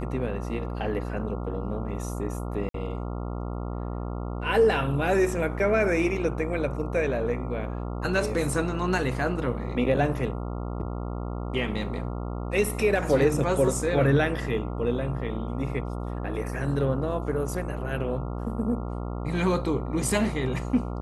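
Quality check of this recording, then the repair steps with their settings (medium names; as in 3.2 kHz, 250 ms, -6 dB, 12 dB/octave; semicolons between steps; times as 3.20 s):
buzz 60 Hz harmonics 23 -32 dBFS
2.69–2.74 s: dropout 53 ms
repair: de-hum 60 Hz, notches 23; interpolate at 2.69 s, 53 ms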